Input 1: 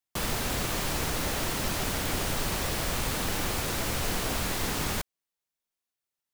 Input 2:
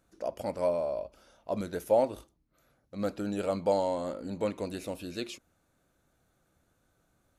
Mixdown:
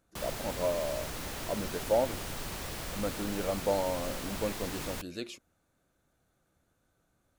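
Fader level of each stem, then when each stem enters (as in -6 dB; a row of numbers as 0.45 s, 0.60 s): -9.0 dB, -2.5 dB; 0.00 s, 0.00 s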